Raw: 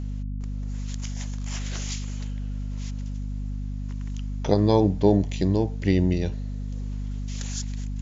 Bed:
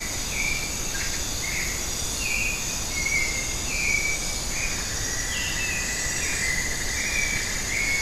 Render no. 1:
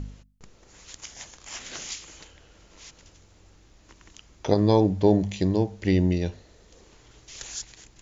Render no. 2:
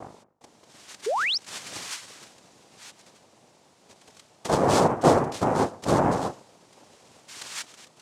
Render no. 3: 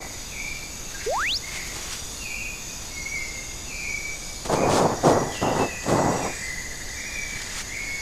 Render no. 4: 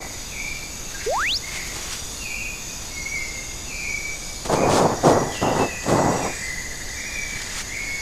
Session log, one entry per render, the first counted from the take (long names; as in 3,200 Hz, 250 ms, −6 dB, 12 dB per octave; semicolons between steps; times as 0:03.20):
hum removal 50 Hz, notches 5
cochlear-implant simulation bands 2; 0:01.06–0:01.38: sound drawn into the spectrogram rise 380–5,900 Hz −25 dBFS
mix in bed −6.5 dB
level +2.5 dB